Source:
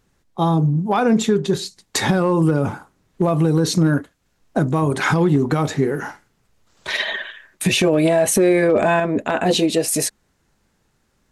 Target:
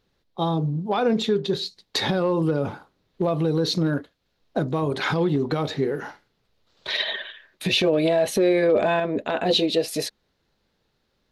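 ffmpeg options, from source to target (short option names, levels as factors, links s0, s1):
-af "equalizer=f=500:t=o:w=1:g=6,equalizer=f=4000:t=o:w=1:g=12,equalizer=f=8000:t=o:w=1:g=-11,volume=0.398"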